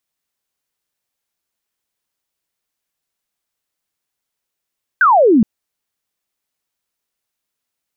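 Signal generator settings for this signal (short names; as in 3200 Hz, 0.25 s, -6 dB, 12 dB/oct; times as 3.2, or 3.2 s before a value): laser zap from 1600 Hz, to 200 Hz, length 0.42 s sine, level -7 dB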